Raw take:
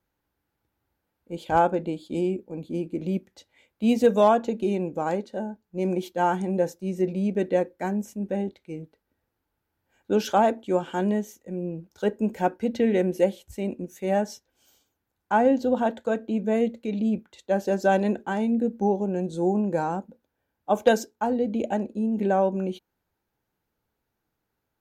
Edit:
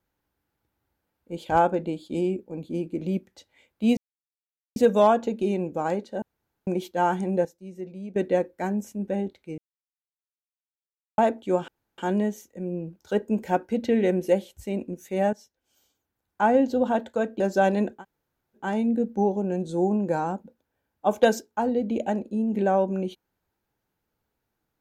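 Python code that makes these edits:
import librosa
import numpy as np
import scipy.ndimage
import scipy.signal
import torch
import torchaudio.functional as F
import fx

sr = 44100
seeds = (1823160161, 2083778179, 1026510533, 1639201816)

y = fx.edit(x, sr, fx.insert_silence(at_s=3.97, length_s=0.79),
    fx.room_tone_fill(start_s=5.43, length_s=0.45),
    fx.clip_gain(start_s=6.66, length_s=0.71, db=-11.5),
    fx.silence(start_s=8.79, length_s=1.6),
    fx.insert_room_tone(at_s=10.89, length_s=0.3),
    fx.fade_in_from(start_s=14.24, length_s=1.11, floor_db=-14.0),
    fx.cut(start_s=16.31, length_s=1.37),
    fx.insert_room_tone(at_s=18.25, length_s=0.64, crossfade_s=0.16), tone=tone)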